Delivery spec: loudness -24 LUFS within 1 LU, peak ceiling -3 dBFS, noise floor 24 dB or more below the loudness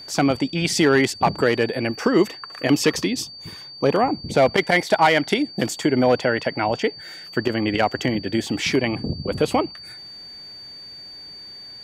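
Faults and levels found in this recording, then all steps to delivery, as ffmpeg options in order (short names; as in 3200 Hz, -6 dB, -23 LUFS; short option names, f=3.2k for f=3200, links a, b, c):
steady tone 4600 Hz; tone level -37 dBFS; loudness -21.0 LUFS; peak -5.5 dBFS; loudness target -24.0 LUFS
-> -af "bandreject=f=4.6k:w=30"
-af "volume=-3dB"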